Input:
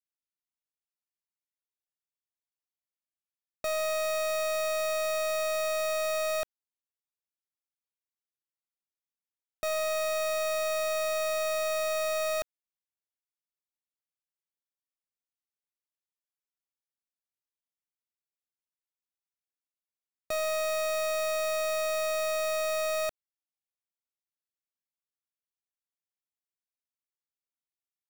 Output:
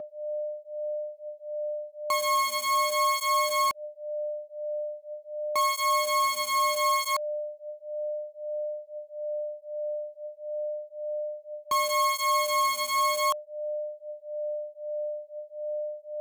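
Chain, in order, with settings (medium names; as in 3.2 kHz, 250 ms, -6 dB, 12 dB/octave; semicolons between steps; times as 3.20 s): speed mistake 45 rpm record played at 78 rpm; whistle 600 Hz -35 dBFS; cancelling through-zero flanger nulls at 0.78 Hz, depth 2 ms; trim +7 dB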